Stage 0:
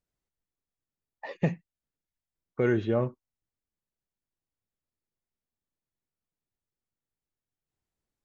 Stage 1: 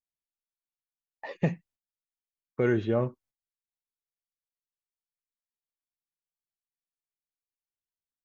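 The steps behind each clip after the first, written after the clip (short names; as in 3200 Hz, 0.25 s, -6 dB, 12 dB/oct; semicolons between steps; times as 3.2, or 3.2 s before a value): gate -58 dBFS, range -19 dB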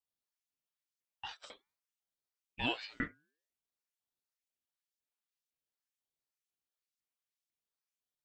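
LFO high-pass saw up 2 Hz 920–5500 Hz; de-hum 148.9 Hz, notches 5; ring modulator with a swept carrier 1400 Hz, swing 40%, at 0.49 Hz; gain +1 dB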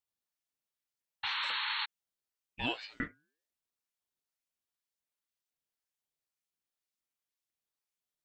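painted sound noise, 1.23–1.86, 820–4400 Hz -35 dBFS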